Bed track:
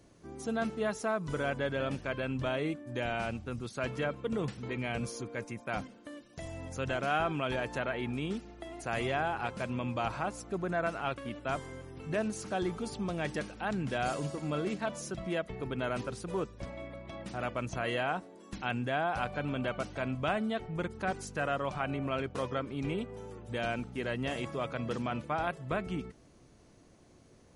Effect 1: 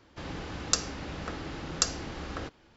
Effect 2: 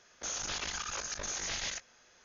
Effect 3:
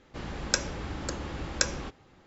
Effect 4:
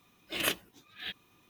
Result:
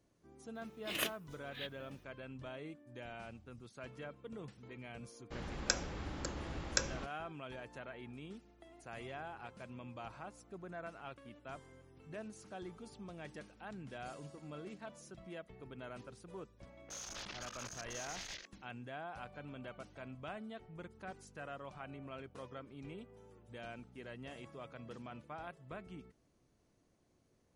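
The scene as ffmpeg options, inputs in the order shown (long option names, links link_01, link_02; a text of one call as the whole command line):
ffmpeg -i bed.wav -i cue0.wav -i cue1.wav -i cue2.wav -i cue3.wav -filter_complex "[0:a]volume=-14.5dB[link_01];[3:a]agate=range=-33dB:threshold=-45dB:ratio=3:release=100:detection=peak[link_02];[2:a]afwtdn=0.00631[link_03];[4:a]atrim=end=1.49,asetpts=PTS-STARTPTS,volume=-6.5dB,afade=type=in:duration=0.004:curve=hsin,afade=type=out:start_time=1.486:duration=0.004:curve=hsin,adelay=550[link_04];[link_02]atrim=end=2.26,asetpts=PTS-STARTPTS,volume=-7dB,afade=type=in:duration=0.004:curve=hsin,afade=type=out:start_time=2.256:duration=0.004:curve=hsin,adelay=5160[link_05];[link_03]atrim=end=2.24,asetpts=PTS-STARTPTS,volume=-9.5dB,afade=type=in:duration=0.004:curve=hsin,afade=type=out:start_time=2.236:duration=0.004:curve=hsin,adelay=16670[link_06];[link_01][link_04][link_05][link_06]amix=inputs=4:normalize=0" out.wav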